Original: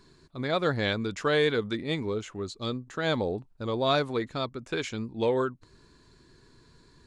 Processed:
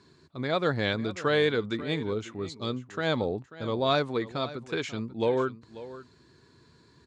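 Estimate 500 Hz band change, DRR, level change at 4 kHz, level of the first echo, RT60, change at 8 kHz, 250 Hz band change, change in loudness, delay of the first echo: 0.0 dB, none, -0.5 dB, -16.0 dB, none, -2.5 dB, 0.0 dB, 0.0 dB, 0.54 s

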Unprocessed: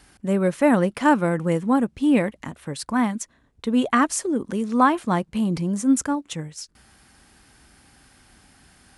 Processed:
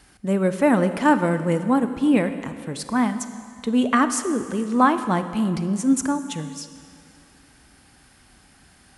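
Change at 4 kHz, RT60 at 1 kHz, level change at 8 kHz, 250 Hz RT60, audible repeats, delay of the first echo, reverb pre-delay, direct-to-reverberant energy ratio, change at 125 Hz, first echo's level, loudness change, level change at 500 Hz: +0.5 dB, 2.4 s, +0.5 dB, 2.4 s, none, none, 30 ms, 10.0 dB, +0.5 dB, none, +0.5 dB, +0.5 dB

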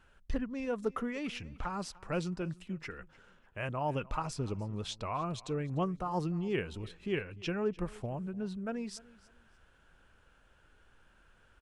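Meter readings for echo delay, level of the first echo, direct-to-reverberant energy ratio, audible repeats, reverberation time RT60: 0.298 s, -21.5 dB, none, 2, none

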